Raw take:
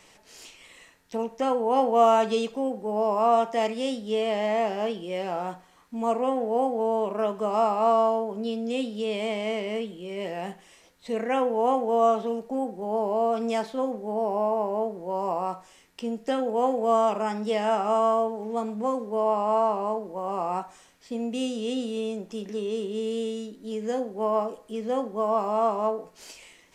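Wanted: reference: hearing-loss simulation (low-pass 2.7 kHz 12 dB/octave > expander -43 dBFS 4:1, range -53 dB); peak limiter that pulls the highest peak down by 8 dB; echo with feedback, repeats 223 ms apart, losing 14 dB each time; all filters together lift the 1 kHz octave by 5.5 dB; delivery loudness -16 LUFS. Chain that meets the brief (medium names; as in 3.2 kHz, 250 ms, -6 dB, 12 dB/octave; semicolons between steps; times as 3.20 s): peaking EQ 1 kHz +7.5 dB; peak limiter -12.5 dBFS; low-pass 2.7 kHz 12 dB/octave; feedback delay 223 ms, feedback 20%, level -14 dB; expander -43 dBFS 4:1, range -53 dB; trim +8.5 dB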